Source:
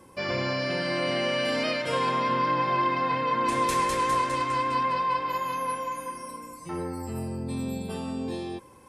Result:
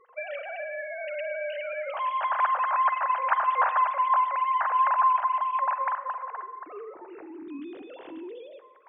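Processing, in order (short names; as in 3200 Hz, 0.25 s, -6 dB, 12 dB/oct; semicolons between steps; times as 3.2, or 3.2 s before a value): sine-wave speech; spring tank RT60 1.1 s, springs 41/45 ms, chirp 75 ms, DRR 11.5 dB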